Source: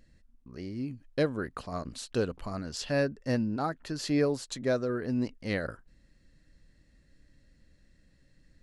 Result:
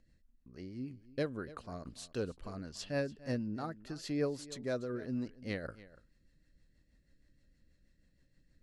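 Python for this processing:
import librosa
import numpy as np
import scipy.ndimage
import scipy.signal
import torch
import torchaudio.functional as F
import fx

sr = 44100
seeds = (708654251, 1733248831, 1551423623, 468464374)

p1 = fx.rotary(x, sr, hz=6.3)
p2 = p1 + fx.echo_single(p1, sr, ms=289, db=-18.0, dry=0)
y = p2 * 10.0 ** (-6.0 / 20.0)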